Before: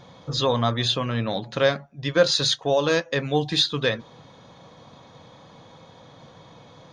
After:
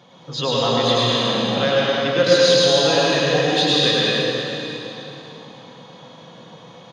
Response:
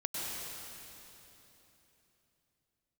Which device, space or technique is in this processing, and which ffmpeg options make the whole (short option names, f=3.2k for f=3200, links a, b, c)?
PA in a hall: -filter_complex "[0:a]highpass=f=140:w=0.5412,highpass=f=140:w=1.3066,equalizer=f=2.9k:t=o:w=0.24:g=8,aecho=1:1:104:0.631[a];[1:a]atrim=start_sample=2205[b];[a][b]afir=irnorm=-1:irlink=0"